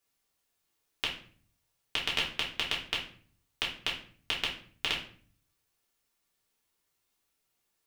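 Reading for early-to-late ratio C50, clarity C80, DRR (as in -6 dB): 6.5 dB, 12.0 dB, -5.0 dB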